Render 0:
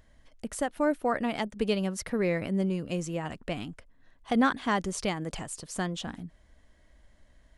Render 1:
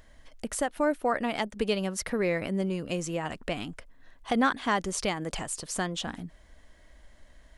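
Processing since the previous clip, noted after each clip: peaking EQ 120 Hz -5.5 dB 2.8 oct; in parallel at +1 dB: compression, threshold -39 dBFS, peak gain reduction 17 dB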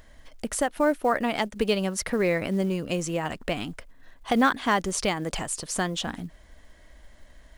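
short-mantissa float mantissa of 4-bit; trim +3.5 dB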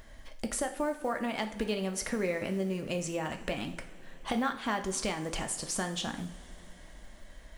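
compression 2.5:1, threshold -34 dBFS, peak gain reduction 12 dB; two-slope reverb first 0.5 s, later 4.8 s, from -20 dB, DRR 5 dB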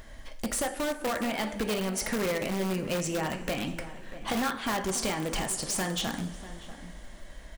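in parallel at -3.5 dB: integer overflow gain 27 dB; on the sum: echo from a far wall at 110 m, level -14 dB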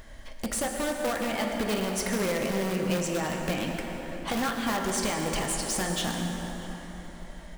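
plate-style reverb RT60 3.9 s, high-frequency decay 0.55×, pre-delay 95 ms, DRR 3.5 dB

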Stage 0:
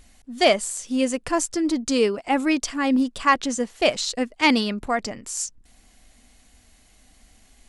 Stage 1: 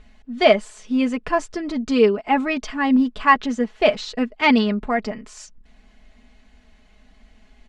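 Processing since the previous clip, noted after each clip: low-pass 2.9 kHz 12 dB/octave; comb 4.7 ms; trim +1.5 dB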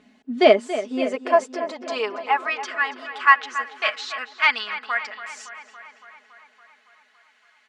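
high-pass sweep 250 Hz -> 1.4 kHz, 0.13–2.73 s; on a send: filtered feedback delay 281 ms, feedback 71%, low-pass 4.2 kHz, level -12.5 dB; on the sum: trim -2 dB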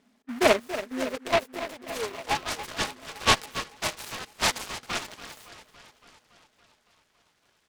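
in parallel at -10 dB: bit crusher 5-bit; on the sum: delay time shaken by noise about 1.4 kHz, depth 0.14 ms; trim -9 dB

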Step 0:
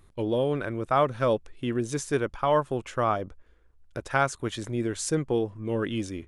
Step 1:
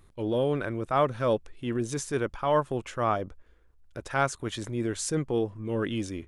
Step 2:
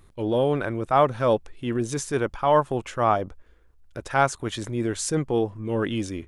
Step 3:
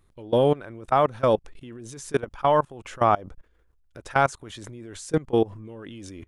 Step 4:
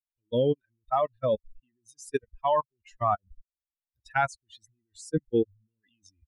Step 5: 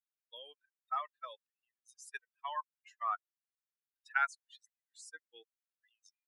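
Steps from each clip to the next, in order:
transient shaper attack -5 dB, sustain 0 dB
dynamic bell 810 Hz, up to +5 dB, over -42 dBFS, Q 2.6; trim +3.5 dB
level held to a coarse grid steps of 22 dB; trim +4 dB
expander on every frequency bin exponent 3
ladder high-pass 1.2 kHz, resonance 45%; trim +1 dB

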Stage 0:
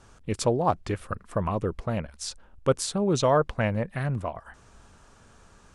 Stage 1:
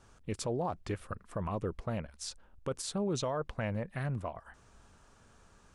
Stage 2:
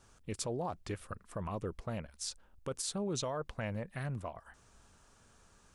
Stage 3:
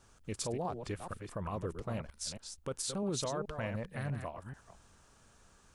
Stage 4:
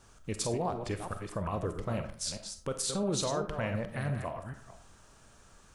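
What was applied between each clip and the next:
peak limiter -19 dBFS, peak gain reduction 9 dB; trim -6.5 dB
treble shelf 3.9 kHz +7 dB; trim -3.5 dB
chunks repeated in reverse 216 ms, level -7 dB
algorithmic reverb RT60 0.5 s, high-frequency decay 0.55×, pre-delay 5 ms, DRR 8 dB; trim +4 dB

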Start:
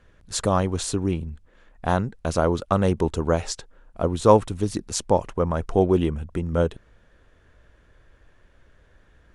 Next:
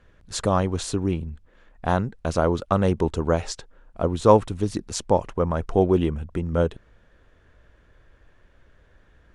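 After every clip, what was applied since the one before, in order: treble shelf 9 kHz -9 dB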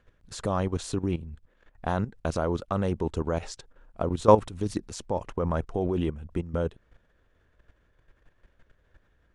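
level held to a coarse grid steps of 13 dB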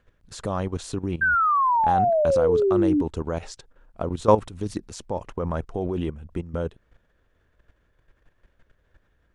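painted sound fall, 1.21–3.02 s, 280–1600 Hz -20 dBFS

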